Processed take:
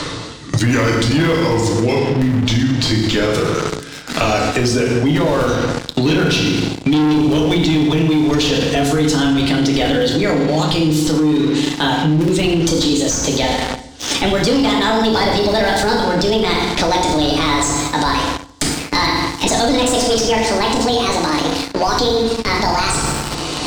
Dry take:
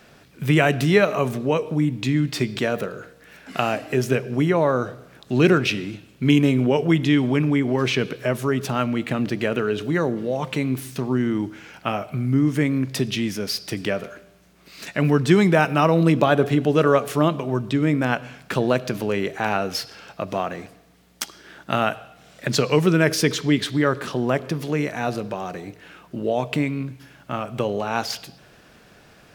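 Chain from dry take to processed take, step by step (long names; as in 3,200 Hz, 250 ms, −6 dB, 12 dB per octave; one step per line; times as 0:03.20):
gliding playback speed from 77% → 171%
flat-topped bell 5,500 Hz +12 dB
gate on every frequency bin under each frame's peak −30 dB strong
in parallel at −5 dB: comparator with hysteresis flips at −12 dBFS
on the sum: feedback delay network reverb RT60 0.89 s, low-frequency decay 1.3×, high-frequency decay 0.75×, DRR −1 dB
leveller curve on the samples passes 3
high-shelf EQ 9,800 Hz −10 dB
reversed playback
upward compression, threshold −9 dBFS
reversed playback
boost into a limiter +5.5 dB
multiband upward and downward compressor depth 70%
level −8 dB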